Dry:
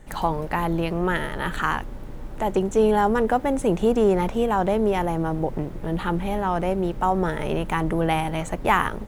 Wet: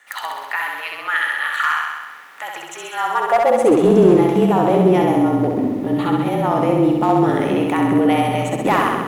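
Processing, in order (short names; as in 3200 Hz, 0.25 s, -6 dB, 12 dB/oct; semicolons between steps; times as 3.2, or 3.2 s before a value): bell 8300 Hz -2.5 dB; notch 1600 Hz, Q 9.9; in parallel at -2.5 dB: limiter -17.5 dBFS, peak gain reduction 10 dB; on the sum: high-pass sweep 1600 Hz -> 270 Hz, 2.93–3.86; frequency shift -37 Hz; overloaded stage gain 8.5 dB; on a send: flutter echo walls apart 11.2 m, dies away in 1.2 s; on the sum: gain -1 dB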